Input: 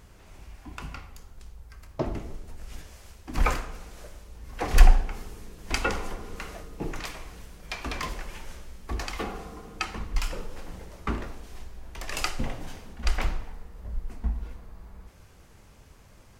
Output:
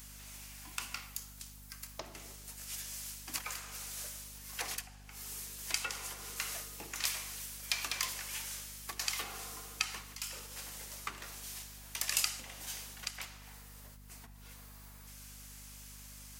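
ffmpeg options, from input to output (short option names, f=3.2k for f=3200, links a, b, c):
-af "acompressor=threshold=-33dB:ratio=12,aderivative,aeval=exprs='val(0)+0.000501*(sin(2*PI*50*n/s)+sin(2*PI*2*50*n/s)/2+sin(2*PI*3*50*n/s)/3+sin(2*PI*4*50*n/s)/4+sin(2*PI*5*50*n/s)/5)':c=same,volume=12.5dB"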